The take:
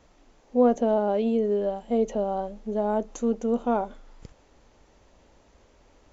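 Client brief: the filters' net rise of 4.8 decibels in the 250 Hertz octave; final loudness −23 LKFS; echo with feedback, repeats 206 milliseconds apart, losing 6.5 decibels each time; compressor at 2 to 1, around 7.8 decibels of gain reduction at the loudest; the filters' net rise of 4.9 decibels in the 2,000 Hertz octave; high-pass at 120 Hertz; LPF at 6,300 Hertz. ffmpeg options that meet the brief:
ffmpeg -i in.wav -af "highpass=120,lowpass=6300,equalizer=frequency=250:width_type=o:gain=5.5,equalizer=frequency=2000:width_type=o:gain=7.5,acompressor=threshold=-25dB:ratio=2,aecho=1:1:206|412|618|824|1030|1236:0.473|0.222|0.105|0.0491|0.0231|0.0109,volume=4dB" out.wav

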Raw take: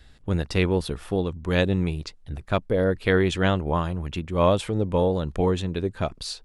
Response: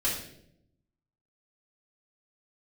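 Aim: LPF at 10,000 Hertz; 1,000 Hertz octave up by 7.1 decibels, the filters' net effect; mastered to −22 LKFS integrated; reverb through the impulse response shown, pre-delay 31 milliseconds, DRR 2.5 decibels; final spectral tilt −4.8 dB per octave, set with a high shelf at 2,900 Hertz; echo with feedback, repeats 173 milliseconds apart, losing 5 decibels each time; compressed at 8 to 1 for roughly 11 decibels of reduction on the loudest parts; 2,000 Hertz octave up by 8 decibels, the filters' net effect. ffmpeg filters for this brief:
-filter_complex "[0:a]lowpass=10000,equalizer=frequency=1000:width_type=o:gain=6.5,equalizer=frequency=2000:width_type=o:gain=6.5,highshelf=frequency=2900:gain=4,acompressor=threshold=-23dB:ratio=8,aecho=1:1:173|346|519|692|865|1038|1211:0.562|0.315|0.176|0.0988|0.0553|0.031|0.0173,asplit=2[link_01][link_02];[1:a]atrim=start_sample=2205,adelay=31[link_03];[link_02][link_03]afir=irnorm=-1:irlink=0,volume=-10.5dB[link_04];[link_01][link_04]amix=inputs=2:normalize=0,volume=2.5dB"

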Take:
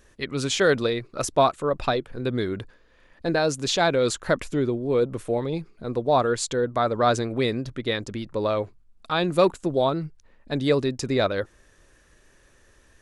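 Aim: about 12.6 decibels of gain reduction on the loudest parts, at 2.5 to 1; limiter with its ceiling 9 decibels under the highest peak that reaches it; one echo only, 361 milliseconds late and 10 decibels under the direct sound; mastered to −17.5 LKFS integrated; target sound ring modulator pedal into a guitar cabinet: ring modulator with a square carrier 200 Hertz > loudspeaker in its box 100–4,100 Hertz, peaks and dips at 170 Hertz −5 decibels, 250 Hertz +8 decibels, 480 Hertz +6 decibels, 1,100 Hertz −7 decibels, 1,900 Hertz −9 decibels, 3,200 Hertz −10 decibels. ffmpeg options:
ffmpeg -i in.wav -af "acompressor=threshold=-34dB:ratio=2.5,alimiter=level_in=2.5dB:limit=-24dB:level=0:latency=1,volume=-2.5dB,aecho=1:1:361:0.316,aeval=exprs='val(0)*sgn(sin(2*PI*200*n/s))':channel_layout=same,highpass=100,equalizer=frequency=170:width_type=q:width=4:gain=-5,equalizer=frequency=250:width_type=q:width=4:gain=8,equalizer=frequency=480:width_type=q:width=4:gain=6,equalizer=frequency=1100:width_type=q:width=4:gain=-7,equalizer=frequency=1900:width_type=q:width=4:gain=-9,equalizer=frequency=3200:width_type=q:width=4:gain=-10,lowpass=frequency=4100:width=0.5412,lowpass=frequency=4100:width=1.3066,volume=18.5dB" out.wav

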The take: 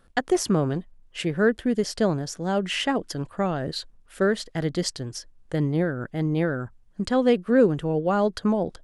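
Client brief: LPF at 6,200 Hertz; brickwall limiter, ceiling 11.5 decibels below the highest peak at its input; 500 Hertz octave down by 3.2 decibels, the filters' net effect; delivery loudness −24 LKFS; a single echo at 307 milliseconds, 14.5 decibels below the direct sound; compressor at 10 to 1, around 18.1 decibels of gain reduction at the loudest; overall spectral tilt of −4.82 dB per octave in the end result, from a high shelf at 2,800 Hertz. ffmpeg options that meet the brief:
ffmpeg -i in.wav -af "lowpass=6200,equalizer=frequency=500:width_type=o:gain=-4,highshelf=frequency=2800:gain=6.5,acompressor=threshold=-35dB:ratio=10,alimiter=level_in=6.5dB:limit=-24dB:level=0:latency=1,volume=-6.5dB,aecho=1:1:307:0.188,volume=16.5dB" out.wav

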